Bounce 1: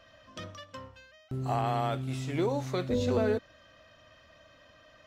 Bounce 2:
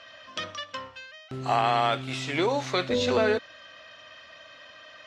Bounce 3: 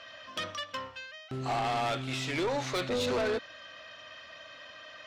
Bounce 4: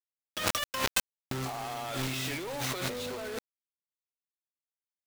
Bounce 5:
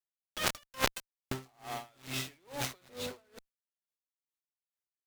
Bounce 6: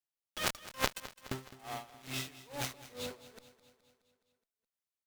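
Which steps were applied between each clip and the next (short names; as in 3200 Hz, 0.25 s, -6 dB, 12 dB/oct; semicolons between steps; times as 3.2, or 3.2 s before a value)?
LPF 3500 Hz 12 dB/oct; tilt +4 dB/oct; gain +8.5 dB
soft clip -26.5 dBFS, distortion -7 dB
requantised 6-bit, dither none; negative-ratio compressor -43 dBFS, ratio -1; gain +8.5 dB
added harmonics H 4 -8 dB, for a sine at -11.5 dBFS; dB-linear tremolo 2.3 Hz, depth 32 dB
feedback echo 0.21 s, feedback 59%, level -16.5 dB; gain -2 dB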